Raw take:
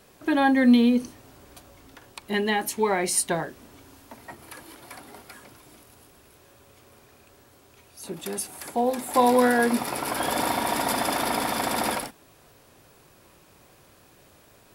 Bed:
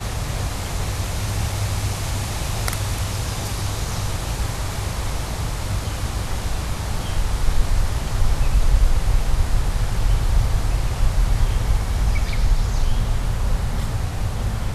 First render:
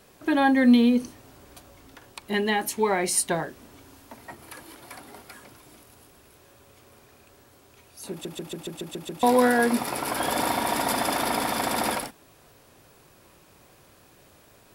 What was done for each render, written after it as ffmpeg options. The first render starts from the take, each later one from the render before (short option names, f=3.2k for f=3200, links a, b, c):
-filter_complex "[0:a]asplit=9[a][b][c][d][e][f][g][h][i];[a]atrim=end=8.252[j];[b]atrim=start=8.108:end=8.252[k];[c]atrim=start=8.108:end=8.252[l];[d]atrim=start=8.108:end=8.252[m];[e]atrim=start=8.108:end=8.252[n];[f]atrim=start=8.108:end=8.252[o];[g]atrim=start=8.108:end=8.252[p];[h]atrim=start=8.108:end=8.252[q];[i]atrim=start=9.228[r];[j][k]acrossfade=d=0.004:c1=hsin:c2=hsin[s];[s][l]acrossfade=d=0.004:c1=hsin:c2=hsin[t];[t][m]acrossfade=d=0.004:c1=hsin:c2=hsin[u];[u][n]acrossfade=d=0.004:c1=hsin:c2=hsin[v];[v][o]acrossfade=d=0.004:c1=hsin:c2=hsin[w];[w][p]acrossfade=d=0.004:c1=hsin:c2=hsin[x];[x][q]acrossfade=d=0.004:c1=hsin:c2=hsin[y];[y][r]acrossfade=d=0.004:c1=hsin:c2=hsin"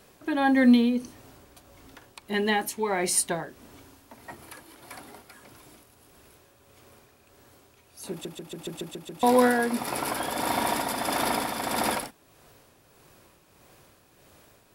-af "tremolo=f=1.6:d=0.44"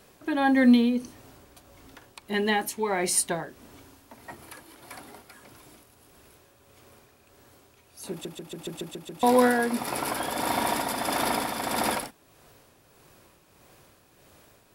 -af anull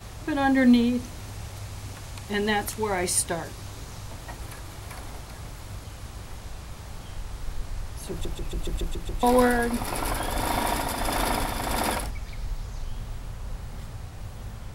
-filter_complex "[1:a]volume=-14.5dB[a];[0:a][a]amix=inputs=2:normalize=0"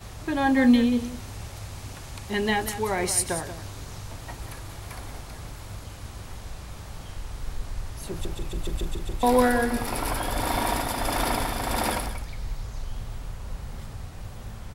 -af "aecho=1:1:183:0.266"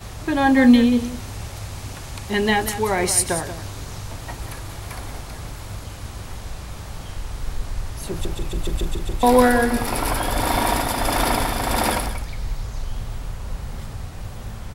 -af "volume=5.5dB"